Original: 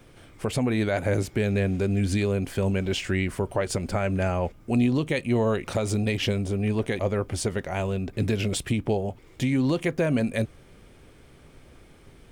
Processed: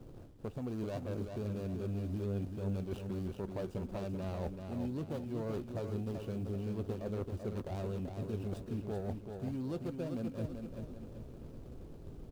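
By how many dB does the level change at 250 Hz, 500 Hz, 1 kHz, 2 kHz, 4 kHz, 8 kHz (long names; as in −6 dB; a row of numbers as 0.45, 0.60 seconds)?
−13.0, −13.5, −15.0, −24.0, −22.5, −25.0 decibels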